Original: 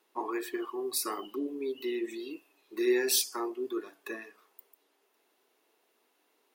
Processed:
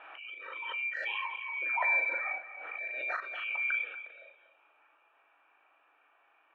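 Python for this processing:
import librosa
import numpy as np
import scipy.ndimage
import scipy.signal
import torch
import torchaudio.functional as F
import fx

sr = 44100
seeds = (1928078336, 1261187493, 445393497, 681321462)

y = fx.band_swap(x, sr, width_hz=2000)
y = scipy.signal.sosfilt(scipy.signal.butter(4, 2200.0, 'lowpass', fs=sr, output='sos'), y)
y = fx.peak_eq(y, sr, hz=1200.0, db=14.5, octaves=1.7)
y = fx.auto_swell(y, sr, attack_ms=619.0)
y = fx.brickwall_highpass(y, sr, low_hz=270.0)
y = fx.doubler(y, sr, ms=38.0, db=-3.5)
y = fx.echo_feedback(y, sr, ms=236, feedback_pct=24, wet_db=-12.5)
y = fx.pre_swell(y, sr, db_per_s=29.0)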